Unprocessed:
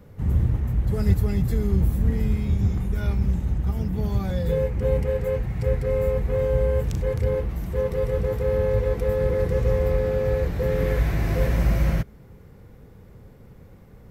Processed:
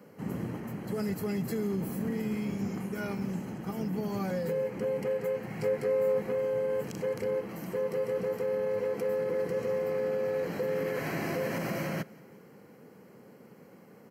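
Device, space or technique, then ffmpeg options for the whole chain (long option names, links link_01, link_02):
PA system with an anti-feedback notch: -filter_complex "[0:a]highpass=frequency=190:width=0.5412,highpass=frequency=190:width=1.3066,asuperstop=centerf=3600:order=12:qfactor=6.5,alimiter=limit=-23.5dB:level=0:latency=1:release=101,asettb=1/sr,asplit=3[link_01][link_02][link_03];[link_01]atrim=end=5.494[link_04];[link_02]atrim=start=5.49:end=6.23,asetpts=PTS-STARTPTS,afade=type=in:duration=0.004:curve=qsin,afade=type=out:start_time=0.736:duration=0.004:curve=qsin,asplit=2[link_05][link_06];[link_06]adelay=19,volume=-6dB[link_07];[link_05][link_07]amix=inputs=2:normalize=0,atrim=end_sample=32634[link_08];[link_03]atrim=start=6.226[link_09];[link_04][link_08]acrossfade=duration=0.004:curve1=hsin:curve2=qsin[link_10];[link_10][link_09]acrossfade=duration=0.004:curve1=qsin:curve2=hsin,aecho=1:1:175|350|525|700:0.0631|0.0353|0.0198|0.0111"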